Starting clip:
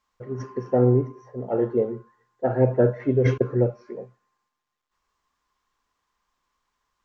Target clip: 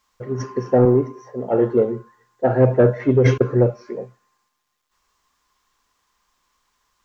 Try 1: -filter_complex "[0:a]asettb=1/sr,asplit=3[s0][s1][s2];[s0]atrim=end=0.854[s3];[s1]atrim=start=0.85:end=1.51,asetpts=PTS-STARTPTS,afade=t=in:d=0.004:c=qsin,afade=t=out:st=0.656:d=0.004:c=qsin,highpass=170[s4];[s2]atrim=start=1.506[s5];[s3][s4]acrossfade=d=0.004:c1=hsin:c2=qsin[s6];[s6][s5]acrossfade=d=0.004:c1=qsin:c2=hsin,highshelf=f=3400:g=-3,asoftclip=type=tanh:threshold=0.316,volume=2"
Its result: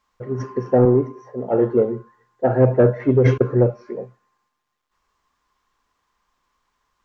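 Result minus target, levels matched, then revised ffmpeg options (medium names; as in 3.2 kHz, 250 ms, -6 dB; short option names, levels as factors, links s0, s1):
8 kHz band -8.0 dB
-filter_complex "[0:a]asettb=1/sr,asplit=3[s0][s1][s2];[s0]atrim=end=0.854[s3];[s1]atrim=start=0.85:end=1.51,asetpts=PTS-STARTPTS,afade=t=in:d=0.004:c=qsin,afade=t=out:st=0.656:d=0.004:c=qsin,highpass=170[s4];[s2]atrim=start=1.506[s5];[s3][s4]acrossfade=d=0.004:c1=hsin:c2=qsin[s6];[s6][s5]acrossfade=d=0.004:c1=qsin:c2=hsin,highshelf=f=3400:g=7.5,asoftclip=type=tanh:threshold=0.316,volume=2"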